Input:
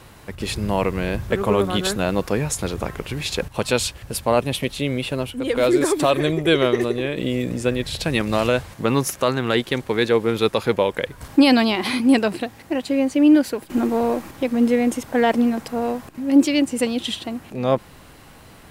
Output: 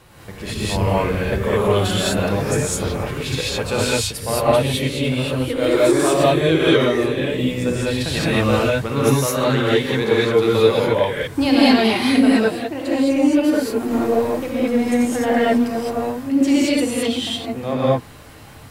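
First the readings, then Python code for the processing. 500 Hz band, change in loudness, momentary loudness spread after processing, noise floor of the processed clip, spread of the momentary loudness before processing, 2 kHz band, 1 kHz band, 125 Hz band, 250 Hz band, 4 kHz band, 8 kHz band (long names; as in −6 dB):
+3.0 dB, +2.5 dB, 7 LU, −39 dBFS, 9 LU, +2.5 dB, +2.5 dB, +5.0 dB, +1.5 dB, +2.5 dB, +3.0 dB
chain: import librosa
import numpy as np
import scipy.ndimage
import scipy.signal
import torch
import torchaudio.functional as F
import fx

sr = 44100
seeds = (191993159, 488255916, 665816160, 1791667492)

p1 = 10.0 ** (-16.0 / 20.0) * np.tanh(x / 10.0 ** (-16.0 / 20.0))
p2 = x + (p1 * librosa.db_to_amplitude(-7.5))
p3 = fx.rev_gated(p2, sr, seeds[0], gate_ms=240, shape='rising', drr_db=-8.0)
y = p3 * librosa.db_to_amplitude(-8.0)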